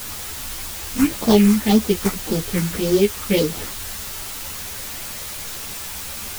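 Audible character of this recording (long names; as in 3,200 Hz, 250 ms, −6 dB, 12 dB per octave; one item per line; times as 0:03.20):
aliases and images of a low sample rate 2,700 Hz, jitter 20%
phaser sweep stages 4, 1.8 Hz, lowest notch 510–2,400 Hz
a quantiser's noise floor 6 bits, dither triangular
a shimmering, thickened sound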